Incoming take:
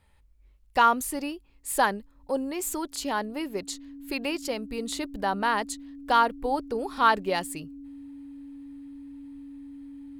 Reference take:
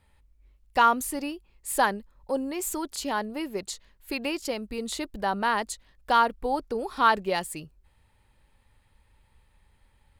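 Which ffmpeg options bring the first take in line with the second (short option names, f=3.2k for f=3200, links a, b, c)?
-af "bandreject=f=280:w=30"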